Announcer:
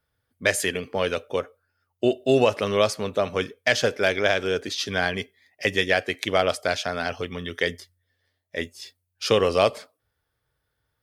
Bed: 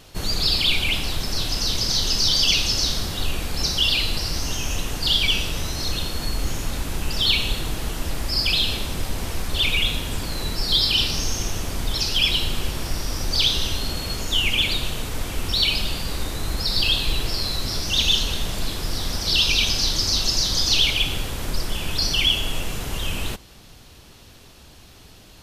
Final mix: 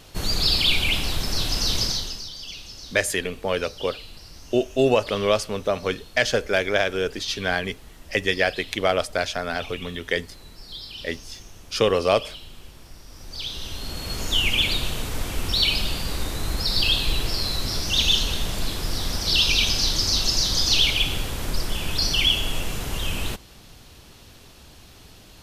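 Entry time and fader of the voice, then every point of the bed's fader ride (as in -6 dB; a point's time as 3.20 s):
2.50 s, 0.0 dB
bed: 1.83 s 0 dB
2.31 s -18.5 dB
13.05 s -18.5 dB
14.25 s -0.5 dB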